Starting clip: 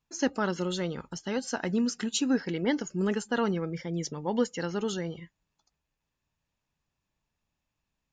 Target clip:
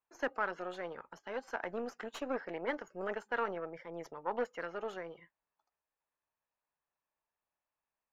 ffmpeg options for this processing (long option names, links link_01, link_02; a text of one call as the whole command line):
ffmpeg -i in.wav -filter_complex "[0:a]aeval=exprs='0.211*(cos(1*acos(clip(val(0)/0.211,-1,1)))-cos(1*PI/2))+0.0299*(cos(6*acos(clip(val(0)/0.211,-1,1)))-cos(6*PI/2))':channel_layout=same,acrossover=split=440 2100:gain=0.0891 1 0.0794[link_01][link_02][link_03];[link_01][link_02][link_03]amix=inputs=3:normalize=0,volume=-2.5dB" out.wav